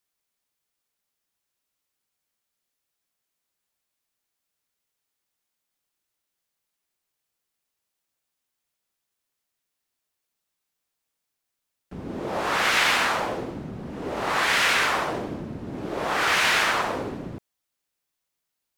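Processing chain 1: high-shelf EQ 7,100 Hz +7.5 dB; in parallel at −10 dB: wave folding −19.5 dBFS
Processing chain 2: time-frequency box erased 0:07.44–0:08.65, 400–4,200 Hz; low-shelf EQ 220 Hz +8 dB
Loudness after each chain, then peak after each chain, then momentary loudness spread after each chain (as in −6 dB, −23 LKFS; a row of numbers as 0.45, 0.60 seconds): −21.0, −23.5 LKFS; −7.0, −8.0 dBFS; 16, 13 LU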